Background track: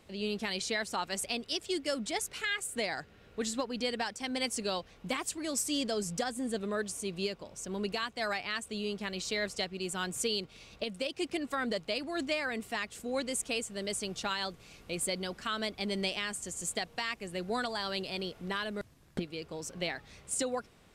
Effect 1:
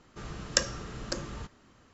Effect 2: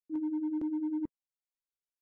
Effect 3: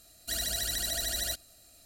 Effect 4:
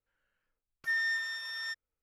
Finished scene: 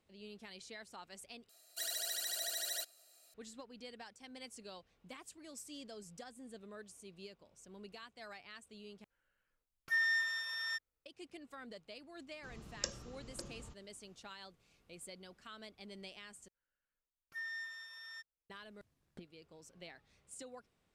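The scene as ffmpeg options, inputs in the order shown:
-filter_complex "[4:a]asplit=2[a][b];[0:a]volume=-17.5dB[c];[3:a]highpass=f=420:w=0.5412,highpass=f=420:w=1.3066[d];[1:a]equalizer=f=1.6k:w=1.3:g=-6.5[e];[c]asplit=4[f][g][h][i];[f]atrim=end=1.494[j];[d]atrim=end=1.85,asetpts=PTS-STARTPTS,volume=-7dB[k];[g]atrim=start=3.336:end=9.044[l];[a]atrim=end=2.02,asetpts=PTS-STARTPTS,volume=-1.5dB[m];[h]atrim=start=11.056:end=16.484[n];[b]atrim=end=2.02,asetpts=PTS-STARTPTS,volume=-12.5dB[o];[i]atrim=start=18.496[p];[e]atrim=end=1.93,asetpts=PTS-STARTPTS,volume=-12.5dB,afade=t=in:d=0.004:c=hsin,afade=t=out:st=1.926:d=0.004:c=hsin,adelay=12270[q];[j][k]acrossfade=d=0.004:c1=hsin:c2=hsin[r];[r][l]acrossfade=d=0.004:c1=hsin:c2=hsin[s];[s][m]acrossfade=d=0.004:c1=hsin:c2=hsin[t];[t][n]acrossfade=d=0.004:c1=hsin:c2=hsin[u];[u][o]acrossfade=d=0.004:c1=hsin:c2=hsin[v];[v][p]acrossfade=d=0.004:c1=hsin:c2=hsin[w];[w][q]amix=inputs=2:normalize=0"

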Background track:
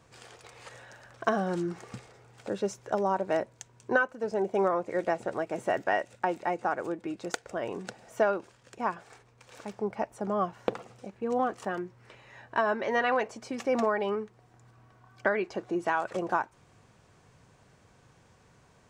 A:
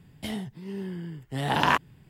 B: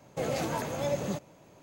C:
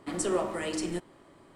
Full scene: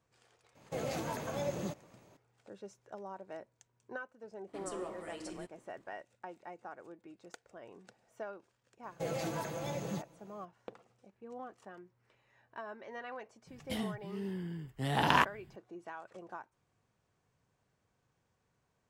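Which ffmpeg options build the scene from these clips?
-filter_complex "[2:a]asplit=2[a][b];[0:a]volume=-18dB[c];[b]aecho=1:1:6:0.63[d];[a]atrim=end=1.62,asetpts=PTS-STARTPTS,volume=-6dB,afade=t=in:d=0.004:c=hsin,afade=t=out:st=1.616:d=0.004:c=hsin,adelay=550[e];[3:a]atrim=end=1.55,asetpts=PTS-STARTPTS,volume=-13.5dB,afade=t=in:d=0.004:c=hsin,afade=t=out:st=1.546:d=0.004:c=hsin,adelay=4470[f];[d]atrim=end=1.62,asetpts=PTS-STARTPTS,volume=-7.5dB,afade=t=in:d=0.004:c=hsin,afade=t=out:st=1.616:d=0.004:c=hsin,adelay=8830[g];[1:a]atrim=end=2.09,asetpts=PTS-STARTPTS,volume=-4.5dB,afade=t=in:d=0.004:c=hsin,afade=t=out:st=2.086:d=0.004:c=hsin,adelay=13470[h];[c][e][f][g][h]amix=inputs=5:normalize=0"

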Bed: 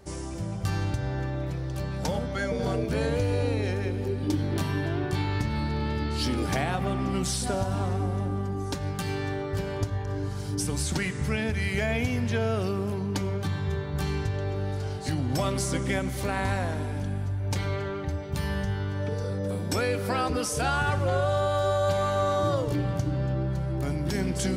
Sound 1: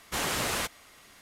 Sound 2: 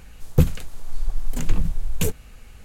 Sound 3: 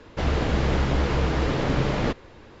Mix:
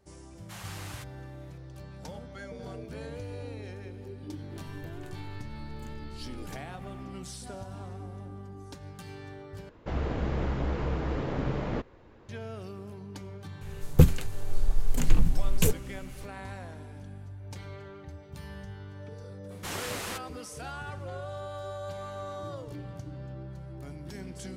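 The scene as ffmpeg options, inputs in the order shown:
-filter_complex "[1:a]asplit=2[a][b];[2:a]asplit=2[c][d];[0:a]volume=-13.5dB[e];[a]highpass=f=600:w=0.5412,highpass=f=600:w=1.3066[f];[c]acompressor=threshold=-28dB:ratio=6:attack=3.2:release=140:knee=1:detection=peak[g];[3:a]equalizer=f=5.5k:w=0.4:g=-9[h];[e]asplit=2[i][j];[i]atrim=end=9.694[k];[h]atrim=end=2.6,asetpts=PTS-STARTPTS,volume=-7dB[l];[j]atrim=start=12.286[m];[f]atrim=end=1.21,asetpts=PTS-STARTPTS,volume=-14.5dB,afade=t=in:d=0.004:c=hsin,afade=t=out:st=1.206:d=0.004:c=hsin,adelay=370[n];[g]atrim=end=2.64,asetpts=PTS-STARTPTS,volume=-14dB,afade=t=in:d=0.1,afade=t=out:st=2.54:d=0.1,adelay=4460[o];[d]atrim=end=2.64,asetpts=PTS-STARTPTS,volume=-1dB,afade=t=in:d=0.004:c=hsin,afade=t=out:st=2.636:d=0.004:c=hsin,adelay=13610[p];[b]atrim=end=1.21,asetpts=PTS-STARTPTS,volume=-6.5dB,afade=t=in:d=0.004:c=hsin,afade=t=out:st=1.206:d=0.004:c=hsin,adelay=19510[q];[k][l]acrossfade=d=0.004:c1=hsin:c2=hsin[r];[r][m]acrossfade=d=0.004:c1=hsin:c2=hsin[s];[s][n][o][p][q]amix=inputs=5:normalize=0"

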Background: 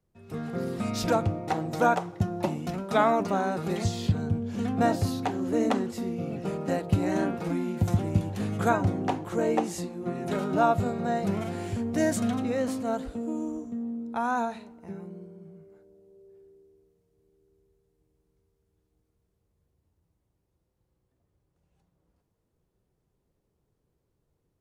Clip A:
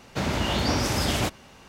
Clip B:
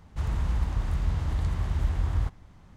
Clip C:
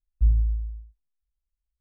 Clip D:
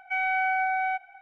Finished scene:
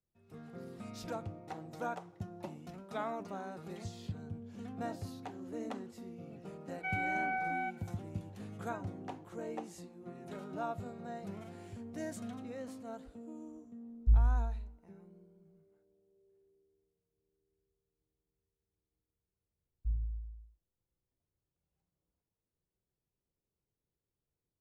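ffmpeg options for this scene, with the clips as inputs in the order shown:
-filter_complex "[3:a]asplit=2[a][b];[0:a]volume=-16dB[c];[4:a]atrim=end=1.21,asetpts=PTS-STARTPTS,volume=-9.5dB,afade=t=in:d=0.004:c=hsin,afade=t=out:st=1.206:d=0.004:c=hsin,adelay=6730[d];[a]atrim=end=1.8,asetpts=PTS-STARTPTS,volume=-5.5dB,afade=t=in:d=0.004:c=hsin,afade=t=out:st=1.796:d=0.004:c=hsin,adelay=13860[e];[b]atrim=end=1.8,asetpts=PTS-STARTPTS,volume=-15dB,afade=t=in:d=0.004:c=hsin,afade=t=out:st=1.796:d=0.004:c=hsin,adelay=19640[f];[c][d][e][f]amix=inputs=4:normalize=0"

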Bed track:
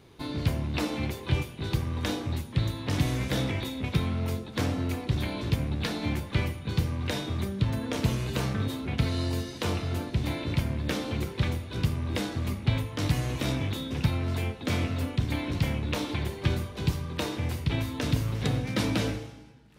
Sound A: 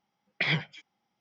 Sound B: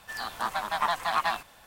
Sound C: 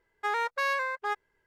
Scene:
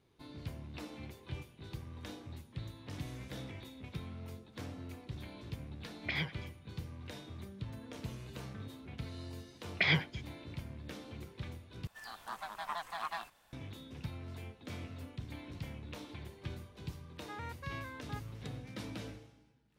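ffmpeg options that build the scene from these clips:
-filter_complex "[1:a]asplit=2[a][b];[0:a]volume=-16.5dB,asplit=2[c][d];[c]atrim=end=11.874[e];[2:a]atrim=end=1.66,asetpts=PTS-STARTPTS,volume=-13dB[f];[d]atrim=start=13.526[g];[a]atrim=end=1.2,asetpts=PTS-STARTPTS,volume=-9dB,afade=t=in:d=0.004:c=hsin,afade=t=out:st=1.196:d=0.004:c=hsin,adelay=5680[h];[b]atrim=end=1.2,asetpts=PTS-STARTPTS,volume=-1.5dB,afade=t=in:d=0.004:c=hsin,afade=t=out:st=1.196:d=0.004:c=hsin,adelay=9400[i];[3:a]atrim=end=1.46,asetpts=PTS-STARTPTS,volume=-17dB,afade=t=in:d=0.004:c=hsin,afade=t=out:st=1.456:d=0.004:c=hsin,adelay=17050[j];[e][f]acrossfade=d=0.004:c1=hsin:c2=hsin[k];[k][g]acrossfade=d=0.004:c1=hsin:c2=hsin[l];[l][h][i][j]amix=inputs=4:normalize=0"

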